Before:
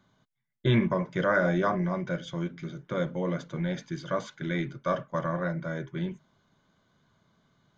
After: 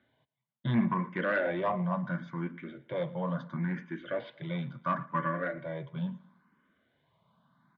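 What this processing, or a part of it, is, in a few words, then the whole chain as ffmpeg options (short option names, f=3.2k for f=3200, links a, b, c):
barber-pole phaser into a guitar amplifier: -filter_complex "[0:a]asplit=2[a][b];[b]afreqshift=0.73[c];[a][c]amix=inputs=2:normalize=1,asoftclip=type=tanh:threshold=-22.5dB,highpass=91,equalizer=f=100:t=q:w=4:g=-5,equalizer=f=230:t=q:w=4:g=4,equalizer=f=400:t=q:w=4:g=-5,equalizer=f=1k:t=q:w=4:g=6,equalizer=f=1.8k:t=q:w=4:g=4,lowpass=f=3.4k:w=0.5412,lowpass=f=3.4k:w=1.3066,asettb=1/sr,asplit=3[d][e][f];[d]atrim=end=4.984[g];[e]atrim=start=4.98:end=5.58,asetpts=PTS-STARTPTS,afade=t=in:d=0.004:c=qsin,afade=t=out:st=0.596:d=0.004:c=qsin,aecho=1:1:6.9:0.7,atrim=end_sample=26460[h];[f]atrim=start=5.576[i];[g][h]acrossfade=d=0.004:c1=hsin:c2=qsin[j];[j][i]acrossfade=d=0.004:c1=qsin:c2=hsin,aecho=1:1:113|226|339:0.0891|0.0348|0.0136"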